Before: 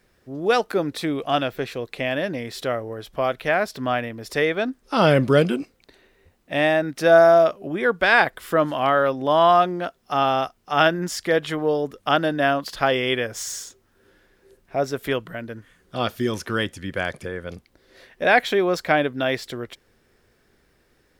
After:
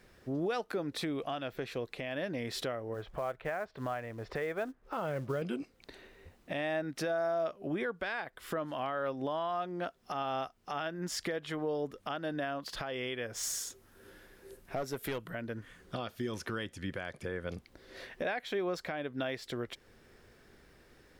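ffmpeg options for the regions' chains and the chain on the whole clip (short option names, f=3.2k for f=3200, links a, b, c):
-filter_complex "[0:a]asettb=1/sr,asplit=3[a][b][c];[a]atrim=end=2.944[d];[b]atrim=start=2.94:end=5.42,asetpts=PTS-STARTPTS,afade=t=in:d=0.004:c=qsin,afade=t=out:st=2.476:d=0.004:c=qsin,lowpass=1.8k,equalizer=f=250:t=o:w=0.91:g=-8,acrusher=bits=6:mode=log:mix=0:aa=0.000001[e];[c]atrim=start=5.416[f];[d][e]acrossfade=d=0.004:c1=hsin:c2=qsin[g];[g][f]acrossfade=d=0.004:c1=qsin:c2=hsin,asettb=1/sr,asplit=3[h][i][j];[h]atrim=end=13.434[k];[i]atrim=start=13.43:end=15.3,asetpts=PTS-STARTPTS,afade=t=in:d=0.004:c=qsin,afade=t=out:st=1.866:d=0.004:c=qsin,equalizer=f=12k:w=0.9:g=10.5,aeval=exprs='clip(val(0),-1,0.075)':c=same[l];[j]atrim=start=15.296[m];[k][l]acrossfade=d=0.004:c1=hsin:c2=qsin[n];[n][m]acrossfade=d=0.004:c1=qsin:c2=hsin,acompressor=threshold=-37dB:ratio=2,highshelf=f=7.9k:g=-4.5,alimiter=level_in=3.5dB:limit=-24dB:level=0:latency=1:release=421,volume=-3.5dB,volume=2dB"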